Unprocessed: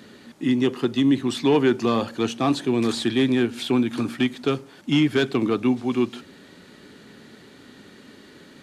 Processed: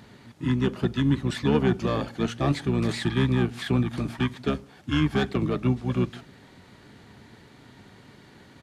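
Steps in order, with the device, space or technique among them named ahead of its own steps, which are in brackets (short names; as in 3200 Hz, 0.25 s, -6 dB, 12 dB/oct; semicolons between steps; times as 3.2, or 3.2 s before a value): octave pedal (harmoniser -12 st 0 dB); gain -6 dB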